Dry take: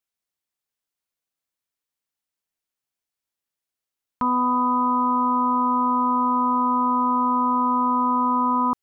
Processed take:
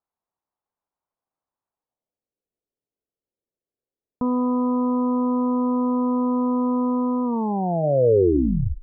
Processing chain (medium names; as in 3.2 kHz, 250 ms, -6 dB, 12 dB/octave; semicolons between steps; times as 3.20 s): tape stop on the ending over 1.59 s; low-pass sweep 940 Hz -> 470 Hz, 1.71–2.30 s; de-hum 319.9 Hz, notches 4; gain riding 2 s